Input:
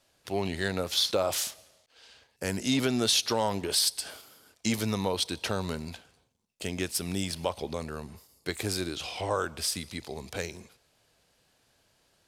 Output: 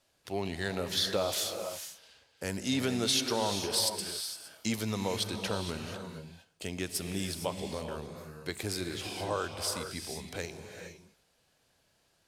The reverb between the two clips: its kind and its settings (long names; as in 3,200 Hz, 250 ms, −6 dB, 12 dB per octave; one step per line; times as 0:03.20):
reverb whose tail is shaped and stops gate 490 ms rising, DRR 5.5 dB
level −4 dB